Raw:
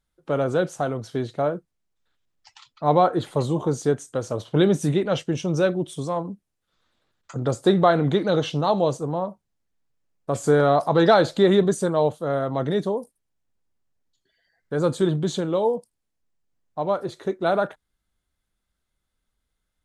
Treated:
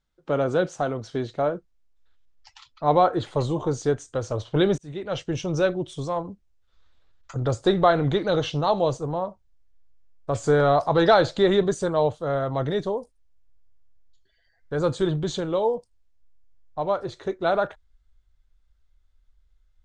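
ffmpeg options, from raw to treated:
-filter_complex "[0:a]asplit=2[a][b];[a]atrim=end=4.78,asetpts=PTS-STARTPTS,afade=t=out:st=4.776:d=0.004:c=hsin[c];[b]atrim=start=4.78,asetpts=PTS-STARTPTS,afade=t=in:d=0.56[d];[c][d]concat=n=2:v=0:a=1,lowpass=f=7.2k:w=0.5412,lowpass=f=7.2k:w=1.3066,asubboost=boost=11:cutoff=58"

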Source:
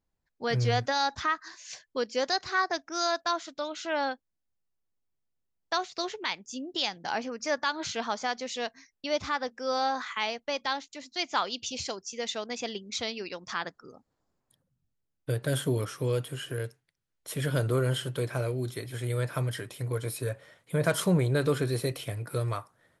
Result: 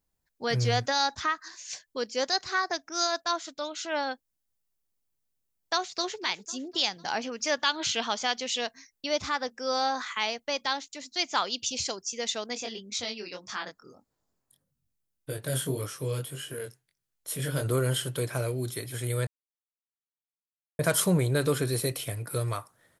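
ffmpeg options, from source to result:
-filter_complex "[0:a]asplit=3[a][b][c];[a]afade=t=out:st=1.06:d=0.02[d];[b]tremolo=f=6.3:d=0.28,afade=t=in:st=1.06:d=0.02,afade=t=out:st=4.1:d=0.02[e];[c]afade=t=in:st=4.1:d=0.02[f];[d][e][f]amix=inputs=3:normalize=0,asplit=2[g][h];[h]afade=t=in:st=5.73:d=0.01,afade=t=out:st=6.19:d=0.01,aecho=0:1:250|500|750|1000|1250|1500:0.141254|0.0847523|0.0508514|0.0305108|0.0183065|0.0109839[i];[g][i]amix=inputs=2:normalize=0,asettb=1/sr,asplit=3[j][k][l];[j]atrim=end=7.234[m];[k]atrim=start=7.23:end=8.61,asetpts=PTS-STARTPTS,afade=t=in:d=0.004:c=qsin,afade=t=out:st=1.376:d=0.004:c=qsin,equalizer=f=3k:t=o:w=0.6:g=8.5[n];[l]atrim=start=8.606[o];[m][n]acrossfade=d=0.004:c1=hsin:c2=qsin[p];[p][o]acrossfade=d=0.004:c1=qsin:c2=hsin,asplit=3[q][r][s];[q]afade=t=out:st=12.55:d=0.02[t];[r]flanger=delay=20:depth=3.5:speed=1.7,afade=t=in:st=12.55:d=0.02,afade=t=out:st=17.63:d=0.02[u];[s]afade=t=in:st=17.63:d=0.02[v];[t][u][v]amix=inputs=3:normalize=0,asplit=3[w][x][y];[w]atrim=end=19.27,asetpts=PTS-STARTPTS,afade=t=out:st=19.266:d=0.004:c=hsin[z];[x]atrim=start=19.27:end=20.79,asetpts=PTS-STARTPTS,volume=0[aa];[y]atrim=start=20.79,asetpts=PTS-STARTPTS,afade=t=in:d=0.004:c=hsin[ab];[z][aa][ab]concat=n=3:v=0:a=1,highshelf=f=6k:g=11.5"

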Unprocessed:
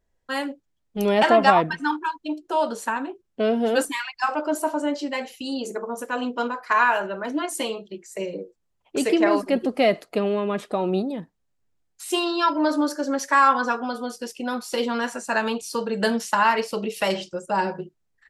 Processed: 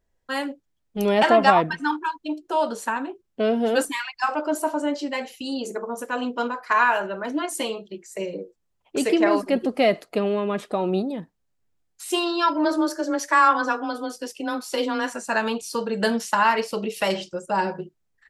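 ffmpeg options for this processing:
-filter_complex "[0:a]asplit=3[a][b][c];[a]afade=t=out:st=12.64:d=0.02[d];[b]afreqshift=20,afade=t=in:st=12.64:d=0.02,afade=t=out:st=15.13:d=0.02[e];[c]afade=t=in:st=15.13:d=0.02[f];[d][e][f]amix=inputs=3:normalize=0"

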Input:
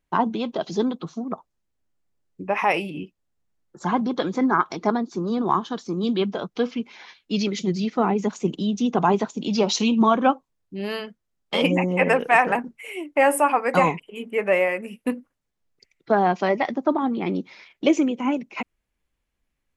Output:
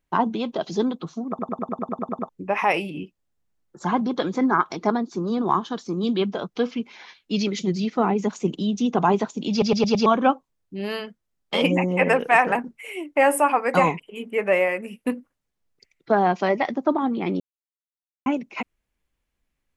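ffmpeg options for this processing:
-filter_complex "[0:a]asplit=18[a][b][c][d][e][f][g][h][i][j][k][l][m][n][o][p][q][r];[a]atrim=end=1.392[s];[b]atrim=start=1.288:end=1.392[t];[c]atrim=start=1.288:end=1.392[u];[d]atrim=start=1.288:end=1.392[v];[e]atrim=start=1.288:end=1.392[w];[f]atrim=start=1.288:end=1.392[x];[g]atrim=start=1.288:end=1.392[y];[h]atrim=start=1.288:end=1.392[z];[i]atrim=start=1.288:end=1.392[aa];[j]atrim=start=1.288:end=1.392[ab];[k]atrim=start=2.288:end=9.622[ac];[l]atrim=start=9.508:end=9.622[ad];[m]atrim=start=9.508:end=9.622[ae];[n]atrim=start=9.508:end=9.622[af];[o]atrim=start=9.508:end=9.622[ag];[p]atrim=start=10.058:end=17.4,asetpts=PTS-STARTPTS,afade=t=out:st=7.338:d=0.004:c=hsin[ah];[q]atrim=start=17.4:end=18.26,asetpts=PTS-STARTPTS,volume=0[ai];[r]atrim=start=18.26,asetpts=PTS-STARTPTS,afade=t=in:d=0.004:c=hsin[aj];[s][t]acrossfade=d=0.004:c1=hsin:c2=hsin[ak];[ak][u]acrossfade=d=0.004:c1=hsin:c2=hsin[al];[al][v]acrossfade=d=0.004:c1=hsin:c2=hsin[am];[am][w]acrossfade=d=0.004:c1=hsin:c2=hsin[an];[an][x]acrossfade=d=0.004:c1=hsin:c2=hsin[ao];[ao][y]acrossfade=d=0.004:c1=hsin:c2=hsin[ap];[ap][z]acrossfade=d=0.004:c1=hsin:c2=hsin[aq];[aq][aa]acrossfade=d=0.004:c1=hsin:c2=hsin[ar];[ar][ab]acrossfade=d=0.004:c1=hsin:c2=hsin[as];[as][ac]acrossfade=d=0.004:c1=hsin:c2=hsin[at];[at][ad]acrossfade=d=0.004:c1=hsin:c2=hsin[au];[au][ae]acrossfade=d=0.004:c1=hsin:c2=hsin[av];[av][af]acrossfade=d=0.004:c1=hsin:c2=hsin[aw];[aw][ag]acrossfade=d=0.004:c1=hsin:c2=hsin[ax];[ah][ai][aj]concat=n=3:v=0:a=1[ay];[ax][ay]acrossfade=d=0.004:c1=hsin:c2=hsin"

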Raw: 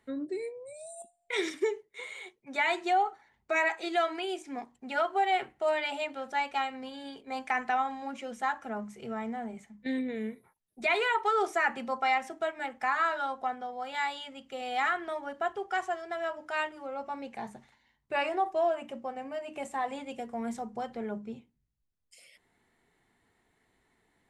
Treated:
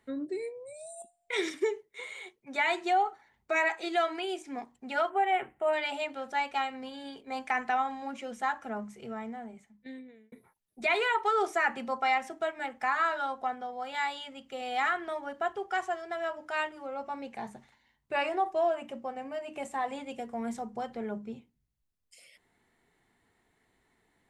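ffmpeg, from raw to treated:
-filter_complex "[0:a]asplit=3[a][b][c];[a]afade=t=out:st=5.09:d=0.02[d];[b]asuperstop=centerf=5000:order=4:qfactor=0.92,afade=t=in:st=5.09:d=0.02,afade=t=out:st=5.72:d=0.02[e];[c]afade=t=in:st=5.72:d=0.02[f];[d][e][f]amix=inputs=3:normalize=0,asplit=2[g][h];[g]atrim=end=10.32,asetpts=PTS-STARTPTS,afade=t=out:st=8.74:d=1.58[i];[h]atrim=start=10.32,asetpts=PTS-STARTPTS,afade=t=in:d=0.004:c=hsin[j];[i][j]concat=n=2:v=0:a=1"

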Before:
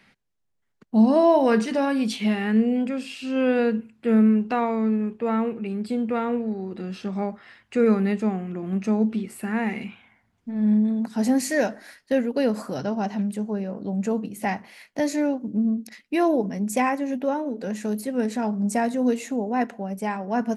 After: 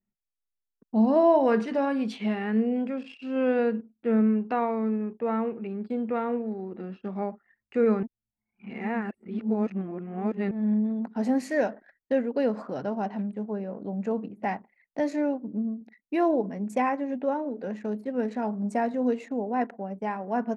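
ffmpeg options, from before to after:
-filter_complex "[0:a]asplit=4[a][b][c][d];[a]atrim=end=8.032[e];[b]atrim=start=8.028:end=10.512,asetpts=PTS-STARTPTS,areverse[f];[c]atrim=start=10.508:end=15.81,asetpts=PTS-STARTPTS,afade=t=out:st=4.902:d=0.4:c=qsin:silence=0.446684[g];[d]atrim=start=15.81,asetpts=PTS-STARTPTS,afade=t=in:d=0.004:c=hsin:silence=0.446684[h];[e][f]acrossfade=d=0.004:c1=hsin:c2=hsin[i];[g][h]concat=n=2:v=0:a=1[j];[i][j]acrossfade=d=0.004:c1=hsin:c2=hsin,lowpass=f=1.2k:p=1,anlmdn=0.0398,lowshelf=f=190:g=-11.5"

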